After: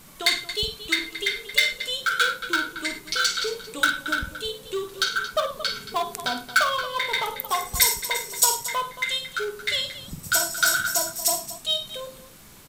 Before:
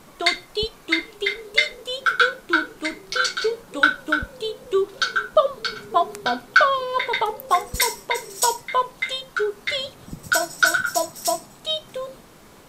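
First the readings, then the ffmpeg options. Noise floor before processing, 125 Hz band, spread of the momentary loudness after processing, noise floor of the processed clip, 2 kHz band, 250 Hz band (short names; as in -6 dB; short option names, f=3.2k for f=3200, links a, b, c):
-48 dBFS, -0.5 dB, 9 LU, -47 dBFS, -3.0 dB, -6.0 dB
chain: -filter_complex "[0:a]bass=f=250:g=10,treble=f=4k:g=-6,aecho=1:1:48|59|94|106|226:0.376|0.141|0.126|0.106|0.2,asplit=2[a][b];[b]aeval=exprs='0.133*(abs(mod(val(0)/0.133+3,4)-2)-1)':c=same,volume=-11.5dB[c];[a][c]amix=inputs=2:normalize=0,crystalizer=i=8.5:c=0,volume=-12dB"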